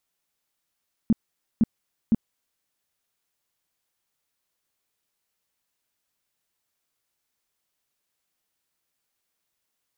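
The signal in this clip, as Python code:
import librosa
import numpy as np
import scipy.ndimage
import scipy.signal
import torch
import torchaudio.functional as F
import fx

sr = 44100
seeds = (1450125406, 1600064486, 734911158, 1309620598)

y = fx.tone_burst(sr, hz=224.0, cycles=6, every_s=0.51, bursts=3, level_db=-14.0)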